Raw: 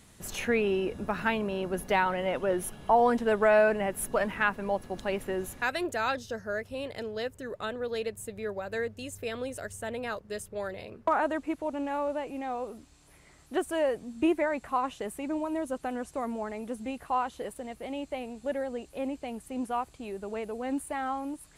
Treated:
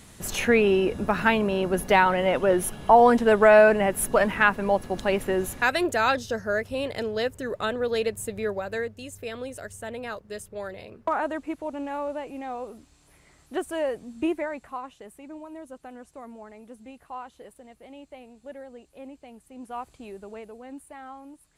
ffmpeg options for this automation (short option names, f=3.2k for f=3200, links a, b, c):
-af "volume=15dB,afade=t=out:st=8.4:d=0.53:silence=0.446684,afade=t=out:st=14.18:d=0.72:silence=0.354813,afade=t=in:st=19.59:d=0.33:silence=0.398107,afade=t=out:st=19.92:d=0.76:silence=0.375837"